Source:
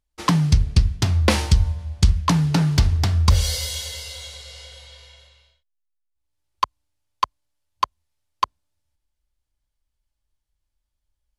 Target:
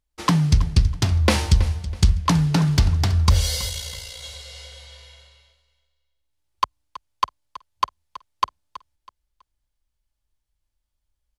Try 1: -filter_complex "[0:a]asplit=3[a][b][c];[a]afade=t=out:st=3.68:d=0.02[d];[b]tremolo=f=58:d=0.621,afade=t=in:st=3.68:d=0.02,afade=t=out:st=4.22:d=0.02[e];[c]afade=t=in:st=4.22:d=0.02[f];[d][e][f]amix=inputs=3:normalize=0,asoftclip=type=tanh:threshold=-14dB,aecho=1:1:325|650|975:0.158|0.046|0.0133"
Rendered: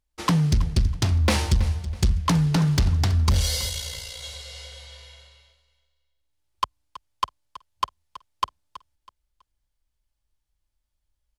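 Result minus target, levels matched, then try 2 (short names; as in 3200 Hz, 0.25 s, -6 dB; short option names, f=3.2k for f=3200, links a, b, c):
soft clip: distortion +17 dB
-filter_complex "[0:a]asplit=3[a][b][c];[a]afade=t=out:st=3.68:d=0.02[d];[b]tremolo=f=58:d=0.621,afade=t=in:st=3.68:d=0.02,afade=t=out:st=4.22:d=0.02[e];[c]afade=t=in:st=4.22:d=0.02[f];[d][e][f]amix=inputs=3:normalize=0,asoftclip=type=tanh:threshold=-2.5dB,aecho=1:1:325|650|975:0.158|0.046|0.0133"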